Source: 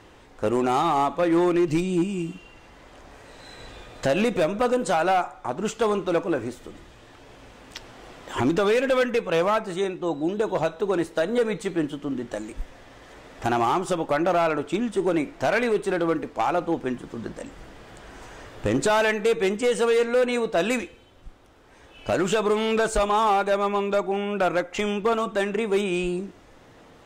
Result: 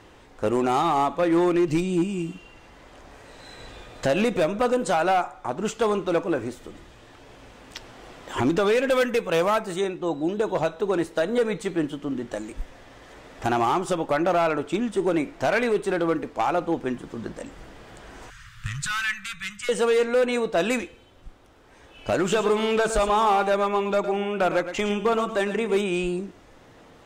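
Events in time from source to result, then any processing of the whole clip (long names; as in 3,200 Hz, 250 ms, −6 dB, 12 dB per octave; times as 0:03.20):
0:08.90–0:09.81: high-shelf EQ 9,000 Hz +11.5 dB
0:18.30–0:19.69: elliptic band-stop filter 150–1,300 Hz
0:22.21–0:25.80: single-tap delay 111 ms −10.5 dB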